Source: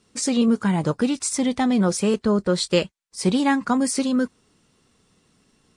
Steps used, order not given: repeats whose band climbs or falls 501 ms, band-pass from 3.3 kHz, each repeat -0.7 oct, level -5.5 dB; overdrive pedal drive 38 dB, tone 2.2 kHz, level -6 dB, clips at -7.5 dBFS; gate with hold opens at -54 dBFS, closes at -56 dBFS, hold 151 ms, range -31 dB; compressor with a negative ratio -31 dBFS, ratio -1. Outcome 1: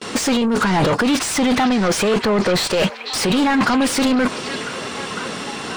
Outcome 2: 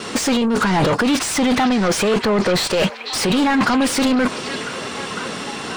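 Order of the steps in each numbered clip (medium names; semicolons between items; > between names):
gate with hold > compressor with a negative ratio > overdrive pedal > repeats whose band climbs or falls; compressor with a negative ratio > gate with hold > overdrive pedal > repeats whose band climbs or falls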